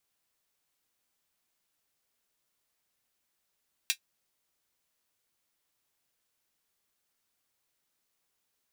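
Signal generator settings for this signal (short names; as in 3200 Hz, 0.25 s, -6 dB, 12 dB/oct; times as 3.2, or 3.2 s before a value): closed hi-hat, high-pass 2600 Hz, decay 0.09 s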